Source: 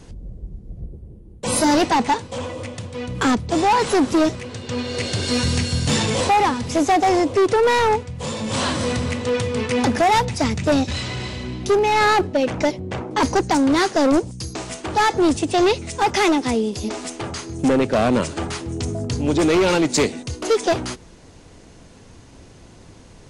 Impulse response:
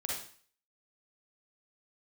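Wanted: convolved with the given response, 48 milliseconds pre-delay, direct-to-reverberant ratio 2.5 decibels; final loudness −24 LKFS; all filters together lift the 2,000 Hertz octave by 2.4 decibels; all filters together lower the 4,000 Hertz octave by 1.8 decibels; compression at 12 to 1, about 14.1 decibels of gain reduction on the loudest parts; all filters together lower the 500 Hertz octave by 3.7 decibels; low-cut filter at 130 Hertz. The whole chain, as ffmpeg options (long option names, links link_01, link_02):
-filter_complex "[0:a]highpass=130,equalizer=frequency=500:width_type=o:gain=-5,equalizer=frequency=2000:width_type=o:gain=4,equalizer=frequency=4000:width_type=o:gain=-3.5,acompressor=threshold=-29dB:ratio=12,asplit=2[link_01][link_02];[1:a]atrim=start_sample=2205,adelay=48[link_03];[link_02][link_03]afir=irnorm=-1:irlink=0,volume=-5.5dB[link_04];[link_01][link_04]amix=inputs=2:normalize=0,volume=7dB"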